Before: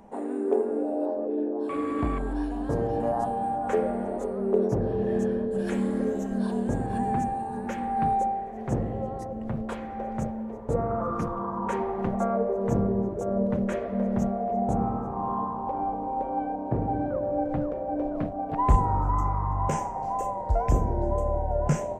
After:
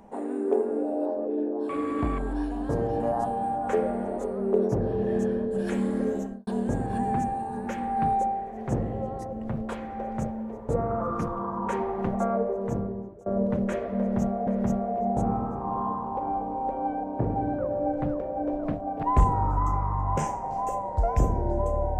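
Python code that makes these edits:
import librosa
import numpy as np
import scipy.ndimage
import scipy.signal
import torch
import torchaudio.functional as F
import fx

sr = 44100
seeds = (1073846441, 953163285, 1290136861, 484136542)

y = fx.studio_fade_out(x, sr, start_s=6.16, length_s=0.31)
y = fx.edit(y, sr, fx.fade_out_to(start_s=12.36, length_s=0.9, floor_db=-22.5),
    fx.repeat(start_s=13.99, length_s=0.48, count=2), tone=tone)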